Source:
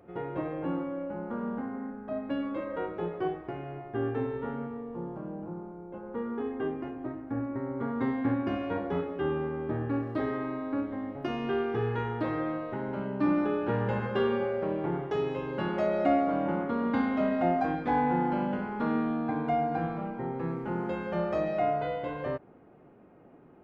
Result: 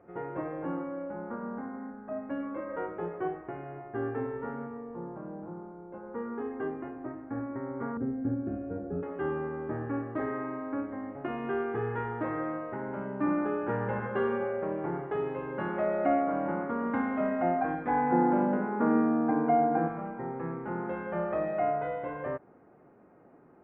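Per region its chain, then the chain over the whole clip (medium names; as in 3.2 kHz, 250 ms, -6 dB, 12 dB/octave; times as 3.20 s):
1.35–2.69 s: distance through air 200 m + hum notches 60/120/180/240/300/360/420/480/540 Hz
7.97–9.03 s: boxcar filter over 44 samples + bass shelf 93 Hz +10 dB
18.12–19.88 s: band-pass 160–2700 Hz + peaking EQ 310 Hz +8 dB 2.5 oct
whole clip: low-pass 2 kHz 24 dB/octave; tilt EQ +1.5 dB/octave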